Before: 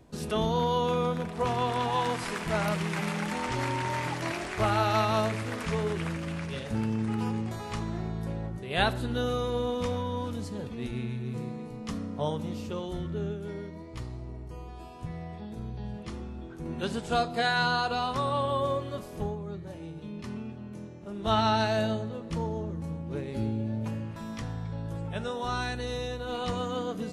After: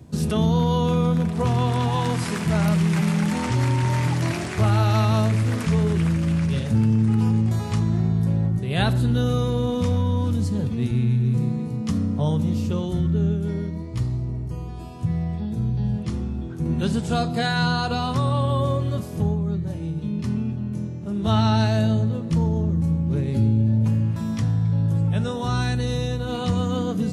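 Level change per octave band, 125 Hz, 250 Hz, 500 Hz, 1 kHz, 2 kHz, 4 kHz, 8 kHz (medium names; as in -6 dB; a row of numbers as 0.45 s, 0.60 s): +14.5 dB, +11.0 dB, +2.5 dB, +1.0 dB, +1.5 dB, +3.0 dB, +6.5 dB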